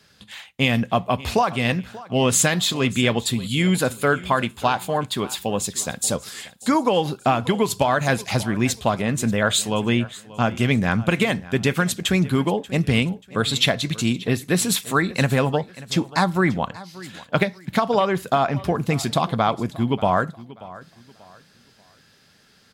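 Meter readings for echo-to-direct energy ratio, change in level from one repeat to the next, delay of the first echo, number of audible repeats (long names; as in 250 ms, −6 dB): −18.5 dB, −10.0 dB, 585 ms, 2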